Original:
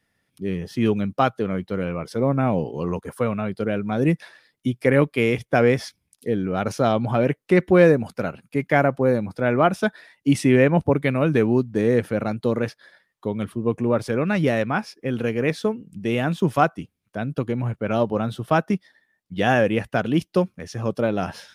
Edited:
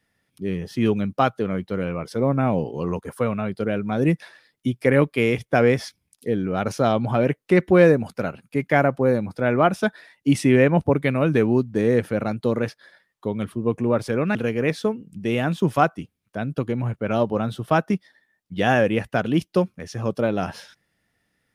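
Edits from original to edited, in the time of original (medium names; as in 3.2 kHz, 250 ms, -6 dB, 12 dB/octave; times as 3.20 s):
14.35–15.15 s: delete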